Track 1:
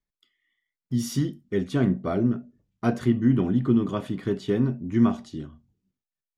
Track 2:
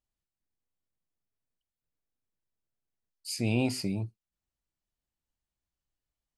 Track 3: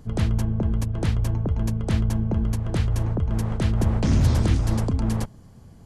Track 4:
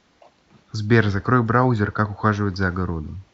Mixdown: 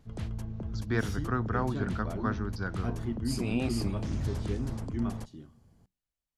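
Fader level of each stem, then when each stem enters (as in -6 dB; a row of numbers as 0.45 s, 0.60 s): -13.0 dB, -4.0 dB, -14.0 dB, -13.5 dB; 0.00 s, 0.00 s, 0.00 s, 0.00 s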